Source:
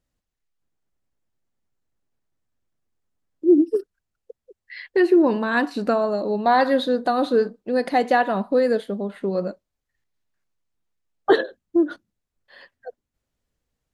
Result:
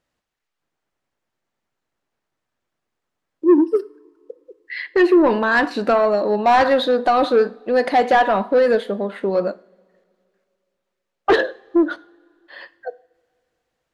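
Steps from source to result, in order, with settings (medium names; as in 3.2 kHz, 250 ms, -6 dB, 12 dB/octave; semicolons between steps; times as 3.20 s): overdrive pedal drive 18 dB, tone 2.4 kHz, clips at -3.5 dBFS; two-slope reverb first 0.46 s, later 2.5 s, from -20 dB, DRR 15.5 dB; trim -1.5 dB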